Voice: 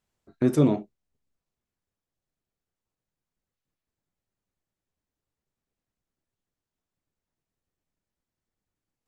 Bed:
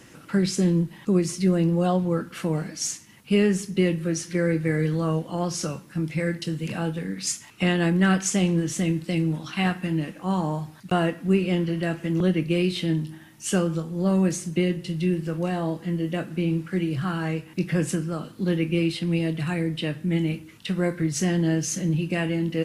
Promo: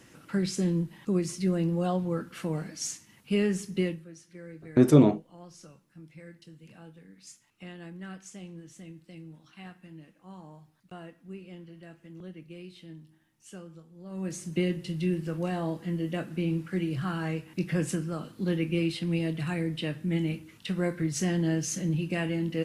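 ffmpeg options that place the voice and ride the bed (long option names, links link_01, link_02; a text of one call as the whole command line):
ffmpeg -i stem1.wav -i stem2.wav -filter_complex "[0:a]adelay=4350,volume=2.5dB[link_01];[1:a]volume=11.5dB,afade=type=out:start_time=3.81:duration=0.24:silence=0.158489,afade=type=in:start_time=14.09:duration=0.49:silence=0.133352[link_02];[link_01][link_02]amix=inputs=2:normalize=0" out.wav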